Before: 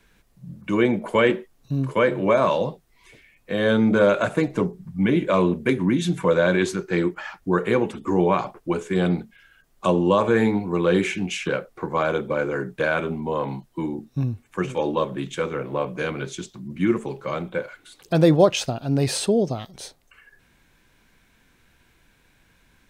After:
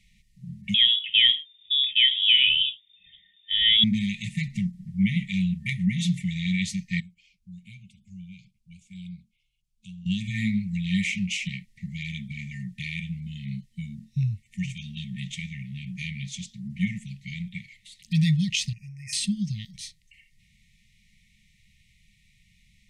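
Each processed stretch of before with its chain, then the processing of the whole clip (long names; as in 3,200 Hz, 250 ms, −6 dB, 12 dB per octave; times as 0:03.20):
0:00.74–0:03.84: high-shelf EQ 2,200 Hz −6 dB + voice inversion scrambler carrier 3,600 Hz
0:07.00–0:10.06: Butterworth band-reject 1,900 Hz, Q 4.3 + guitar amp tone stack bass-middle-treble 6-0-2
0:18.73–0:19.13: Chebyshev band-stop filter 2,500–5,200 Hz, order 4 + downward compressor, threshold −31 dBFS + mid-hump overdrive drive 7 dB, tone 7,800 Hz, clips at −19.5 dBFS
whole clip: low-pass filter 9,200 Hz 12 dB per octave; brick-wall band-stop 220–1,800 Hz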